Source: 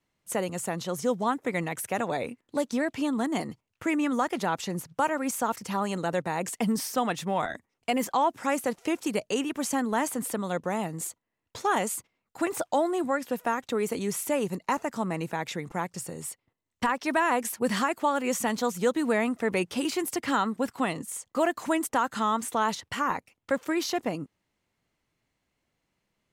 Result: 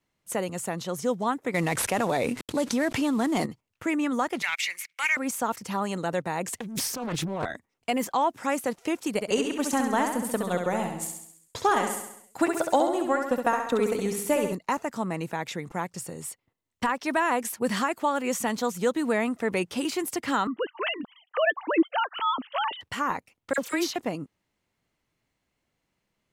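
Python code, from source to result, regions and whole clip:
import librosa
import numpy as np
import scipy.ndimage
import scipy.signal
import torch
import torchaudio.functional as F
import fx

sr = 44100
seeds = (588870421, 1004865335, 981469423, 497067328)

y = fx.chain(x, sr, fx.cvsd(bps=64000),
    fx.env_flatten(amount_pct=70), at=(1.54, 3.46))
y = fx.chain(y, sr, fx.highpass_res(hz=2200.0, q=12.0),
    fx.leveller(passes=1), at=(4.42, 5.17))
y = fx.chain(y, sr, fx.peak_eq(hz=75.0, db=14.5, octaves=2.0),
    fx.over_compress(threshold_db=-31.0, ratio=-1.0),
    fx.doppler_dist(depth_ms=0.98), at=(6.53, 7.45))
y = fx.chain(y, sr, fx.transient(attack_db=5, sustain_db=-7),
    fx.echo_feedback(ms=67, feedback_pct=55, wet_db=-5.5), at=(9.14, 14.53))
y = fx.chain(y, sr, fx.sine_speech(),
    fx.peak_eq(hz=3000.0, db=14.0, octaves=0.39), at=(20.47, 22.81))
y = fx.chain(y, sr, fx.dispersion(late='lows', ms=50.0, hz=2000.0),
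    fx.band_squash(depth_pct=70), at=(23.53, 23.96))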